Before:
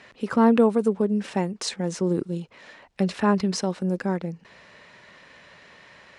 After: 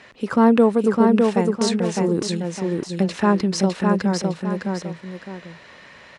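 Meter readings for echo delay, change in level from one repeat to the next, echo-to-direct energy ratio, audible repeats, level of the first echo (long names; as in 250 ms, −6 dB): 608 ms, −9.0 dB, −2.5 dB, 2, −3.0 dB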